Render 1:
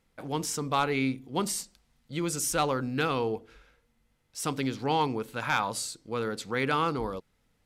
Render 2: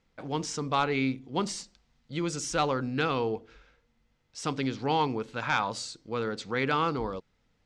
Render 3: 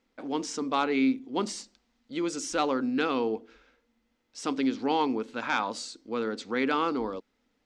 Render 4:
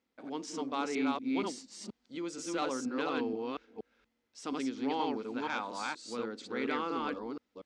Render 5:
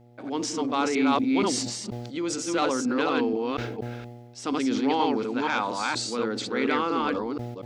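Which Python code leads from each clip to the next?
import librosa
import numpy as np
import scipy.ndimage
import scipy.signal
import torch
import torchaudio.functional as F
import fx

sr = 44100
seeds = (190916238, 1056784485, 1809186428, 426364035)

y1 = scipy.signal.sosfilt(scipy.signal.butter(4, 6700.0, 'lowpass', fs=sr, output='sos'), x)
y2 = fx.low_shelf_res(y1, sr, hz=190.0, db=-8.5, q=3.0)
y2 = y2 * 10.0 ** (-1.0 / 20.0)
y3 = fx.reverse_delay(y2, sr, ms=238, wet_db=-1.0)
y3 = scipy.signal.sosfilt(scipy.signal.butter(2, 58.0, 'highpass', fs=sr, output='sos'), y3)
y3 = y3 * 10.0 ** (-8.5 / 20.0)
y4 = fx.dmg_buzz(y3, sr, base_hz=120.0, harmonics=7, level_db=-63.0, tilt_db=-5, odd_only=False)
y4 = fx.sustainer(y4, sr, db_per_s=36.0)
y4 = y4 * 10.0 ** (8.5 / 20.0)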